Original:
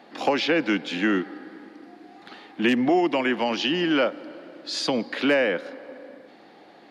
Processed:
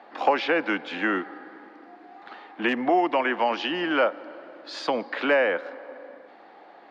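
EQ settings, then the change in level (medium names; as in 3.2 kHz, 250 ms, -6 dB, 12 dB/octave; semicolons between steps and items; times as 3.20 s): band-pass filter 1 kHz, Q 0.96; +4.5 dB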